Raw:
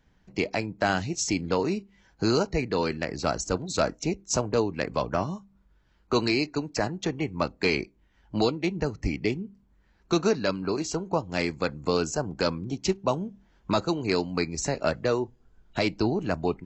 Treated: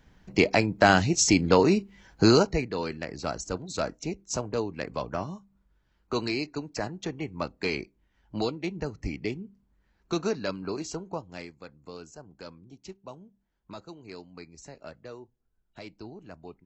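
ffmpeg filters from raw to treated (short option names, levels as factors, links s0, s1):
-af "volume=2,afade=t=out:st=2.24:d=0.46:silence=0.281838,afade=t=out:st=10.89:d=0.64:silence=0.223872"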